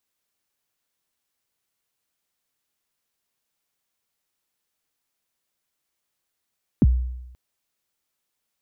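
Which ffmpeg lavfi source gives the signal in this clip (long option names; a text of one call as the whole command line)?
ffmpeg -f lavfi -i "aevalsrc='0.316*pow(10,-3*t/0.93)*sin(2*PI*(320*0.035/log(62/320)*(exp(log(62/320)*min(t,0.035)/0.035)-1)+62*max(t-0.035,0)))':duration=0.53:sample_rate=44100" out.wav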